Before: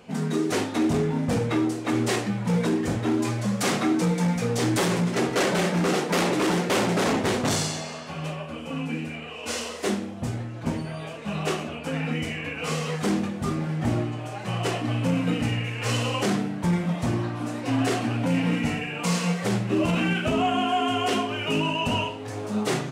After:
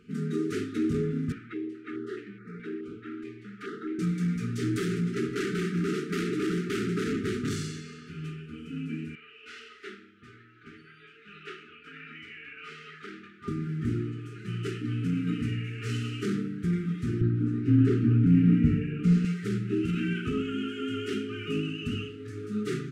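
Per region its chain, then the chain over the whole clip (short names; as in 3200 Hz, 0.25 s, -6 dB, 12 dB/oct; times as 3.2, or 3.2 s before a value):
1.32–3.99 three-band isolator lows -20 dB, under 340 Hz, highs -22 dB, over 3000 Hz + stepped notch 4.7 Hz 470–3100 Hz
9.15–13.48 HPF 43 Hz + three-band isolator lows -22 dB, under 550 Hz, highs -18 dB, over 4100 Hz
17.21–19.25 tilt -3.5 dB/oct + short-mantissa float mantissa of 8-bit
whole clip: high shelf 2100 Hz -10.5 dB; FFT band-reject 460–1200 Hz; gain -4 dB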